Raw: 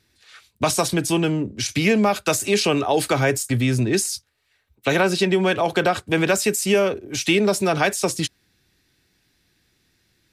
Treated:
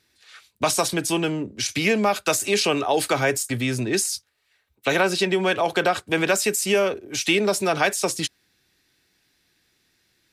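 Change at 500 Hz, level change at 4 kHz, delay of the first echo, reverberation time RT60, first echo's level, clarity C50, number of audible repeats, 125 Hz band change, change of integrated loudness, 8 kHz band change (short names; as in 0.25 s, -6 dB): -2.0 dB, 0.0 dB, none, none, none, none, none, -6.5 dB, -1.5 dB, 0.0 dB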